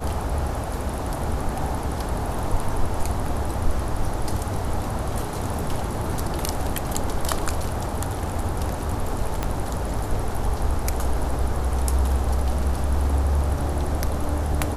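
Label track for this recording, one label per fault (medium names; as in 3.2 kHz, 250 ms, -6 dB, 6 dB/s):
9.430000	9.430000	pop -10 dBFS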